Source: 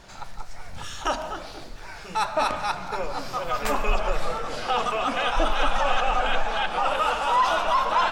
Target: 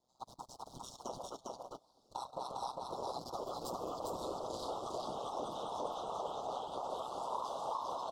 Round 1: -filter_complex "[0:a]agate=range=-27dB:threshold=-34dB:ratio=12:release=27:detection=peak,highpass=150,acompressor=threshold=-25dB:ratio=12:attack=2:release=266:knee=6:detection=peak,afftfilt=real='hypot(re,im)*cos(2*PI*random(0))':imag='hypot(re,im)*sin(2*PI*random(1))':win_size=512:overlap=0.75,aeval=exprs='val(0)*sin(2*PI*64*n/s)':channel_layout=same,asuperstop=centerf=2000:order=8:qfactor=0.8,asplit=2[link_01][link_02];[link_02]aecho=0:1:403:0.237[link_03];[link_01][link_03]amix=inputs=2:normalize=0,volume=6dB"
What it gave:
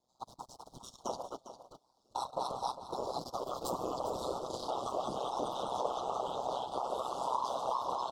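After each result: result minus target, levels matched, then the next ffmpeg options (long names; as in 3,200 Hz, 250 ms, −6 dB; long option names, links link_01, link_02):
echo-to-direct −10.5 dB; downward compressor: peak gain reduction −6.5 dB
-filter_complex "[0:a]agate=range=-27dB:threshold=-34dB:ratio=12:release=27:detection=peak,highpass=150,acompressor=threshold=-25dB:ratio=12:attack=2:release=266:knee=6:detection=peak,afftfilt=real='hypot(re,im)*cos(2*PI*random(0))':imag='hypot(re,im)*sin(2*PI*random(1))':win_size=512:overlap=0.75,aeval=exprs='val(0)*sin(2*PI*64*n/s)':channel_layout=same,asuperstop=centerf=2000:order=8:qfactor=0.8,asplit=2[link_01][link_02];[link_02]aecho=0:1:403:0.794[link_03];[link_01][link_03]amix=inputs=2:normalize=0,volume=6dB"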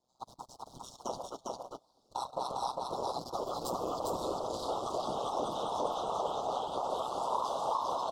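downward compressor: peak gain reduction −6.5 dB
-filter_complex "[0:a]agate=range=-27dB:threshold=-34dB:ratio=12:release=27:detection=peak,highpass=150,acompressor=threshold=-32dB:ratio=12:attack=2:release=266:knee=6:detection=peak,afftfilt=real='hypot(re,im)*cos(2*PI*random(0))':imag='hypot(re,im)*sin(2*PI*random(1))':win_size=512:overlap=0.75,aeval=exprs='val(0)*sin(2*PI*64*n/s)':channel_layout=same,asuperstop=centerf=2000:order=8:qfactor=0.8,asplit=2[link_01][link_02];[link_02]aecho=0:1:403:0.794[link_03];[link_01][link_03]amix=inputs=2:normalize=0,volume=6dB"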